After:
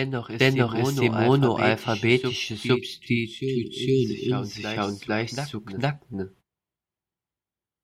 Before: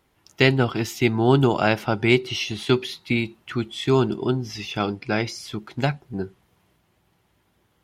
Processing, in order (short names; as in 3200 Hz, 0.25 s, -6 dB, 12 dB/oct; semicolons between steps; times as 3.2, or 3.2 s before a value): gate -46 dBFS, range -24 dB; spectral delete 2.77–4.51, 430–1900 Hz; on a send: reverse echo 0.457 s -6 dB; on the sum: gain -2.5 dB